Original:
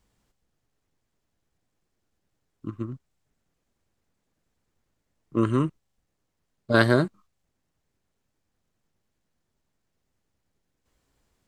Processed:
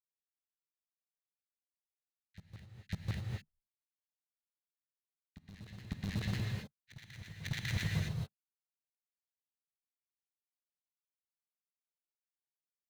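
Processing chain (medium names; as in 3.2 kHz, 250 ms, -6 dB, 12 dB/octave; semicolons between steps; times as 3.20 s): Schmitt trigger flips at -28 dBFS; granulator; Chebyshev band-stop 170–2000 Hz, order 5; bass shelf 380 Hz +6 dB; LFO band-pass square 9.4 Hz 270–1600 Hz; tape speed -11%; in parallel at -5.5 dB: bit crusher 8-bit; on the sum: graphic EQ with 31 bands 200 Hz +5 dB, 4 kHz +12 dB, 6.3 kHz +4 dB; on a send: reverse echo 549 ms -14.5 dB; on the sum: gated-style reverb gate 280 ms rising, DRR 1 dB; trim +9.5 dB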